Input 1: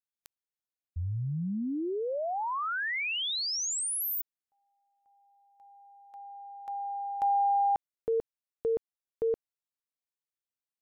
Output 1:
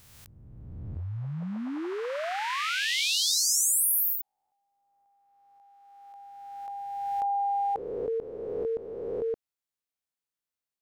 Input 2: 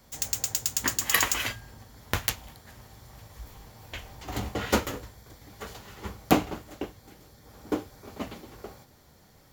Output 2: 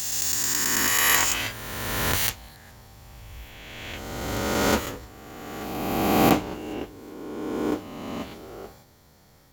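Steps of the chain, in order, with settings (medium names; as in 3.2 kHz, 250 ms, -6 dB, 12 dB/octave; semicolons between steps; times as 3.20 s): reverse spectral sustain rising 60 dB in 2.16 s; trim -2 dB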